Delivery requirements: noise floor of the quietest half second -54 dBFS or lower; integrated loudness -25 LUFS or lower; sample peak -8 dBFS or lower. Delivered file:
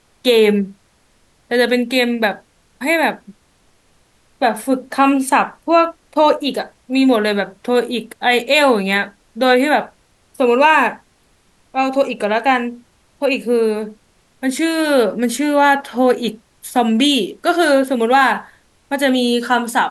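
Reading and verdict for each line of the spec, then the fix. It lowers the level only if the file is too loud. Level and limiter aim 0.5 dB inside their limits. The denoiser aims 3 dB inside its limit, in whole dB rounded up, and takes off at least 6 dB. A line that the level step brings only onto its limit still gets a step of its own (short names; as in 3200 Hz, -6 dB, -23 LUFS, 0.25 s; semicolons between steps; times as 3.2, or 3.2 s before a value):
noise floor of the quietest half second -56 dBFS: OK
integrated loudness -16.0 LUFS: fail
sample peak -2.5 dBFS: fail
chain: gain -9.5 dB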